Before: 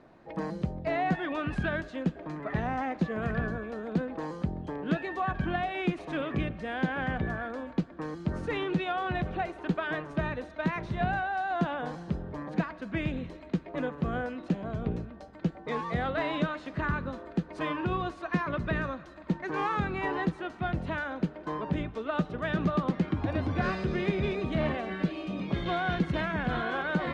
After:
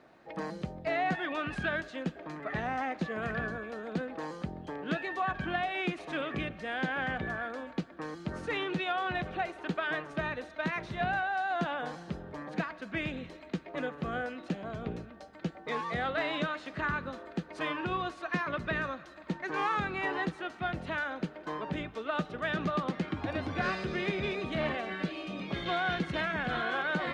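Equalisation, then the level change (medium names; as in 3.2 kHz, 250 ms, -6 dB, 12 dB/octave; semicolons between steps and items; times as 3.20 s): tilt EQ +2.5 dB/octave; treble shelf 5 kHz -6.5 dB; band-stop 1 kHz, Q 14; 0.0 dB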